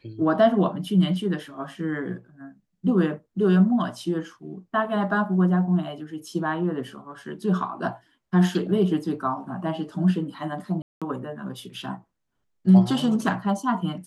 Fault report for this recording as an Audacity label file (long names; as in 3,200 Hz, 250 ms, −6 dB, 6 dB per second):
10.820000	11.020000	drop-out 196 ms